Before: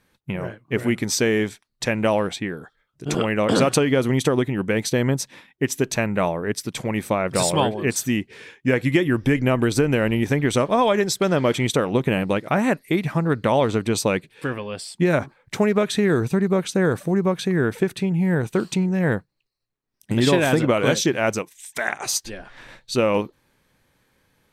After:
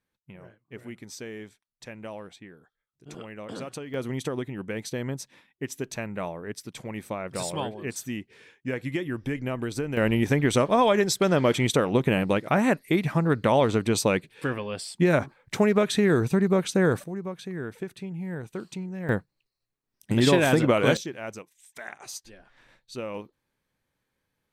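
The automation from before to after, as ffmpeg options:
-af "asetnsamples=n=441:p=0,asendcmd='3.94 volume volume -11dB;9.97 volume volume -2dB;17.04 volume volume -13.5dB;19.09 volume volume -2dB;20.97 volume volume -15dB',volume=-19dB"

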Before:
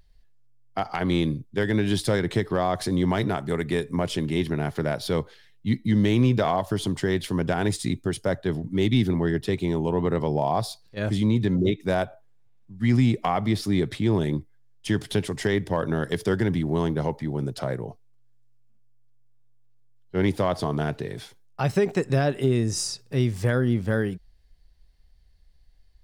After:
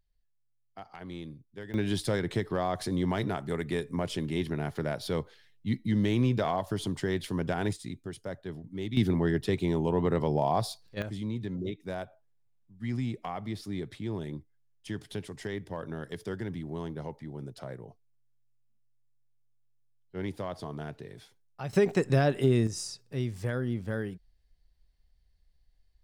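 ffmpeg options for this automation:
-af "asetnsamples=n=441:p=0,asendcmd='1.74 volume volume -6dB;7.73 volume volume -13dB;8.97 volume volume -3dB;11.02 volume volume -12.5dB;21.73 volume volume -2dB;22.67 volume volume -9dB',volume=-18dB"

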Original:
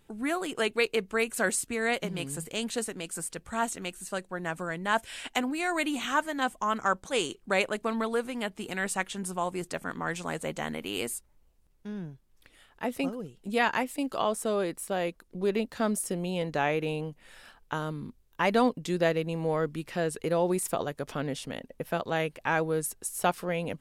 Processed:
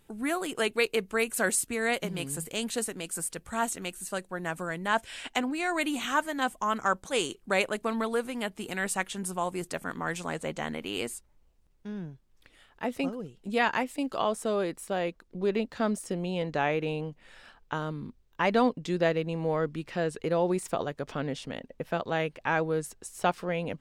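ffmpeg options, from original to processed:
-af "asetnsamples=n=441:p=0,asendcmd='4.88 equalizer g -5.5;5.81 equalizer g 3;10.26 equalizer g -7.5;14.99 equalizer g -14.5',equalizer=f=12k:t=o:w=0.8:g=5"

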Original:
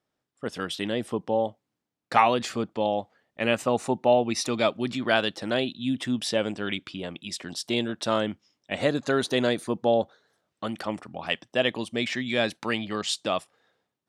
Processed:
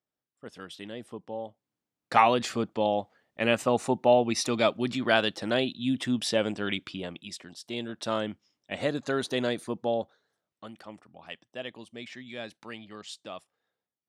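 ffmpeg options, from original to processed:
-af "volume=7dB,afade=t=in:st=1.47:d=0.76:silence=0.281838,afade=t=out:st=6.92:d=0.64:silence=0.266073,afade=t=in:st=7.56:d=0.52:silence=0.421697,afade=t=out:st=9.64:d=1.14:silence=0.334965"

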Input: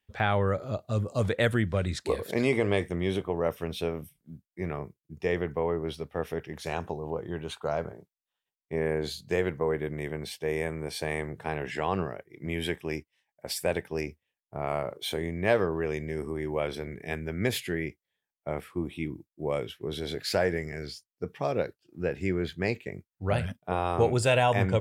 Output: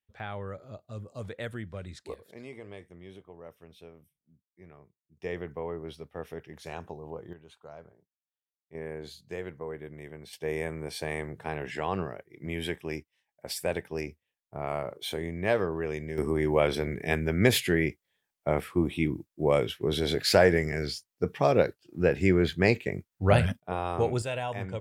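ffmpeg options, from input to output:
-af "asetnsamples=n=441:p=0,asendcmd='2.14 volume volume -19dB;5.22 volume volume -7dB;7.33 volume volume -17dB;8.75 volume volume -10dB;10.33 volume volume -2dB;16.18 volume volume 6dB;23.6 volume volume -3dB;24.22 volume volume -10dB',volume=-12dB"

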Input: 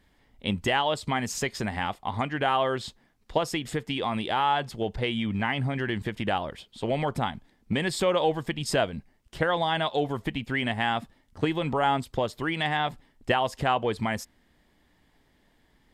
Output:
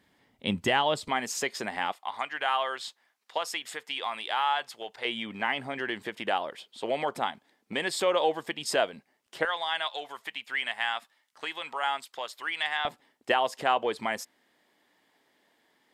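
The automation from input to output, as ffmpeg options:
-af "asetnsamples=n=441:p=0,asendcmd='1.08 highpass f 350;1.92 highpass f 870;5.05 highpass f 400;9.45 highpass f 1100;12.85 highpass f 370',highpass=140"

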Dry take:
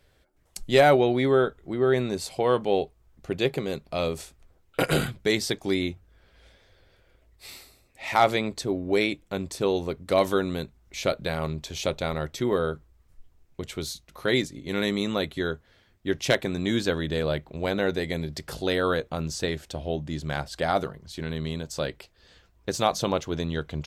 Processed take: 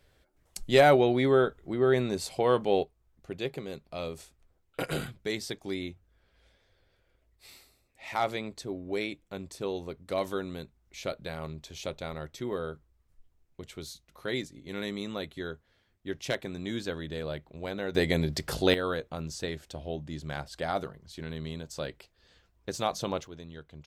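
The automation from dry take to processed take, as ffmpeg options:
-af "asetnsamples=n=441:p=0,asendcmd='2.83 volume volume -9dB;17.95 volume volume 3dB;18.74 volume volume -6.5dB;23.27 volume volume -16dB',volume=-2dB"

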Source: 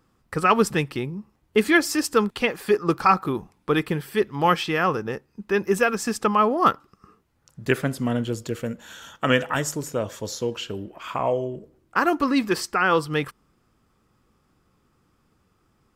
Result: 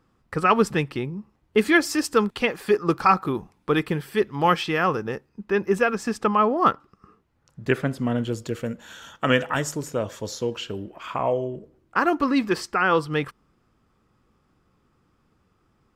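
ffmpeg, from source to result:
-af "asetnsamples=n=441:p=0,asendcmd='1.59 lowpass f 8200;5.29 lowpass f 3100;8.18 lowpass f 7400;11.06 lowpass f 4400',lowpass=f=4.4k:p=1"

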